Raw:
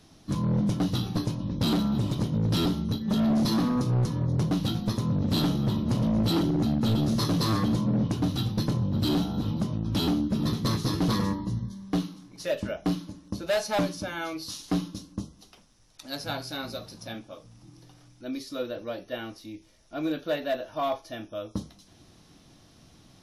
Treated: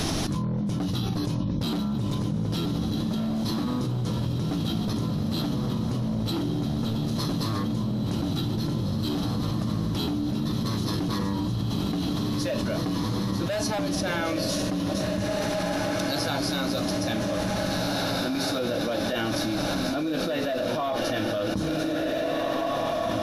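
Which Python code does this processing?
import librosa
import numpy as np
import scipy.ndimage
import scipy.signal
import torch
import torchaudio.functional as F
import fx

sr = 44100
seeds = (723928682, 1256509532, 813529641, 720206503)

y = fx.rider(x, sr, range_db=4, speed_s=2.0)
y = fx.echo_diffused(y, sr, ms=1960, feedback_pct=46, wet_db=-5.0)
y = fx.env_flatten(y, sr, amount_pct=100)
y = y * librosa.db_to_amplitude(-8.0)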